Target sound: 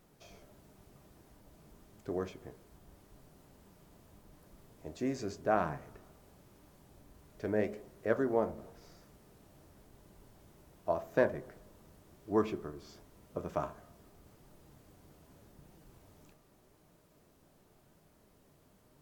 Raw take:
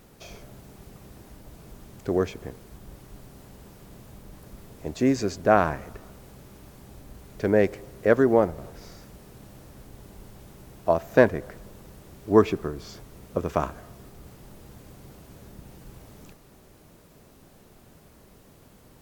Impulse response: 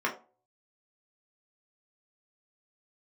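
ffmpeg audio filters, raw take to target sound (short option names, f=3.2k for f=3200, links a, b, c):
-filter_complex "[0:a]flanger=delay=5.2:depth=8.6:regen=72:speed=0.89:shape=triangular,asplit=2[a][b];[1:a]atrim=start_sample=2205,asetrate=25137,aresample=44100[c];[b][c]afir=irnorm=-1:irlink=0,volume=-22dB[d];[a][d]amix=inputs=2:normalize=0,volume=-8.5dB"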